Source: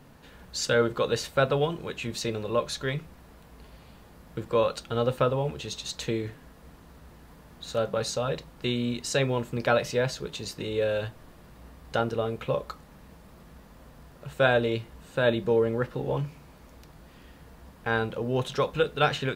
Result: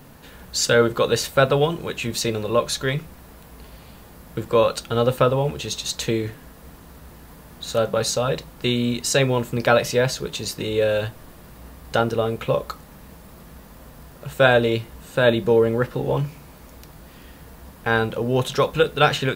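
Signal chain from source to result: treble shelf 10 kHz +11.5 dB; trim +6.5 dB

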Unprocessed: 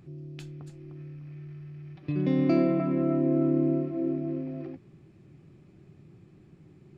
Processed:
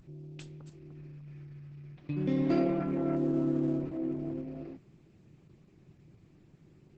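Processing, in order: treble shelf 2.5 kHz +3.5 dB; vibrato 0.45 Hz 40 cents; trim -4.5 dB; Opus 10 kbps 48 kHz

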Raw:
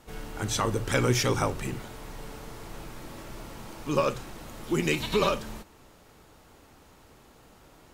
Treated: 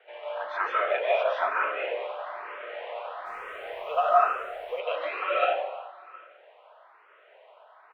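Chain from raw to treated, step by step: gain riding within 4 dB 0.5 s; mistuned SSB +150 Hz 360–2900 Hz; delay 716 ms -23.5 dB; algorithmic reverb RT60 1.1 s, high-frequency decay 0.45×, pre-delay 110 ms, DRR -6.5 dB; 3.25–4.79 s: added noise pink -62 dBFS; barber-pole phaser +1.1 Hz

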